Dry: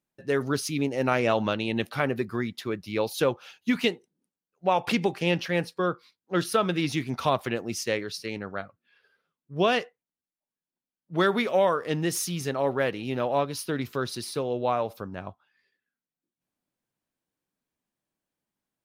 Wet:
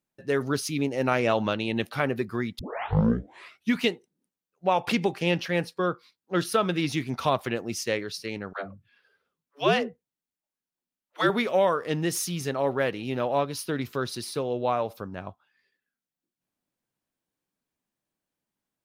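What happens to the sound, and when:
2.59 tape start 1.15 s
8.53–11.3 dispersion lows, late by 0.134 s, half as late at 320 Hz

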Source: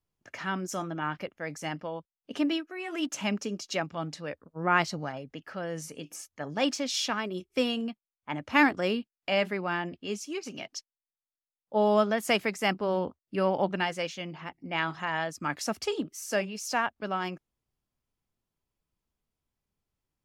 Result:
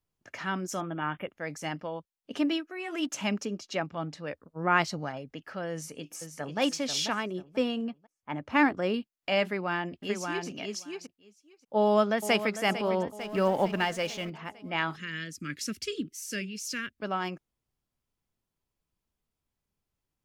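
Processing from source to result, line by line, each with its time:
0.81–1.28 spectral delete 3700–10000 Hz
3.45–4.27 high shelf 4400 Hz -9 dB
5.72–6.59 echo throw 0.49 s, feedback 30%, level -6.5 dB
7.31–8.94 high shelf 2700 Hz -9.5 dB
9.44–10.48 echo throw 0.58 s, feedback 10%, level -4 dB
11.77–12.57 echo throw 0.45 s, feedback 60%, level -12 dB
13.19–14.3 G.711 law mismatch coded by mu
14.96–16.99 Butterworth band-stop 810 Hz, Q 0.55

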